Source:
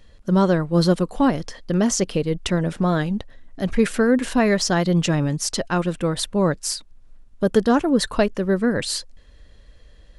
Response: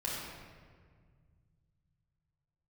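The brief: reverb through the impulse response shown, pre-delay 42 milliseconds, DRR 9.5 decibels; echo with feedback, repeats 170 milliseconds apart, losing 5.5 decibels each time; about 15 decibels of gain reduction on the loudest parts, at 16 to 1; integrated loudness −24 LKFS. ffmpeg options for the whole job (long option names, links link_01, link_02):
-filter_complex "[0:a]acompressor=threshold=-27dB:ratio=16,aecho=1:1:170|340|510|680|850|1020|1190:0.531|0.281|0.149|0.079|0.0419|0.0222|0.0118,asplit=2[link_01][link_02];[1:a]atrim=start_sample=2205,adelay=42[link_03];[link_02][link_03]afir=irnorm=-1:irlink=0,volume=-14dB[link_04];[link_01][link_04]amix=inputs=2:normalize=0,volume=6.5dB"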